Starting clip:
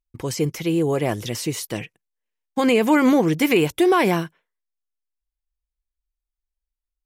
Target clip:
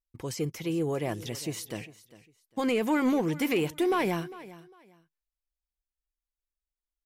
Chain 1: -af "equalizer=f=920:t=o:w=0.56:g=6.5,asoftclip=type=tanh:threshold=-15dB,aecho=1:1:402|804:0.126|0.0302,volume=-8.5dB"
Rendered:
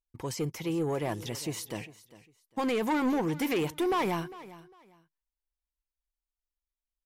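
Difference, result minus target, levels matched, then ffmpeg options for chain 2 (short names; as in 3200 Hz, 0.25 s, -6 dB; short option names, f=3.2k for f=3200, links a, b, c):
soft clip: distortion +12 dB; 1000 Hz band +3.0 dB
-af "asoftclip=type=tanh:threshold=-8dB,aecho=1:1:402|804:0.126|0.0302,volume=-8.5dB"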